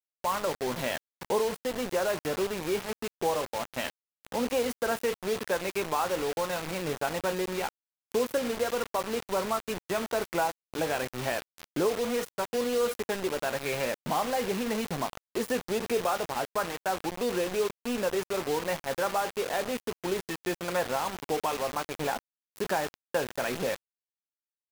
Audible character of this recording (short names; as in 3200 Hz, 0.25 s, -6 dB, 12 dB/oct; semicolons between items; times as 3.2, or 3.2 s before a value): a quantiser's noise floor 6-bit, dither none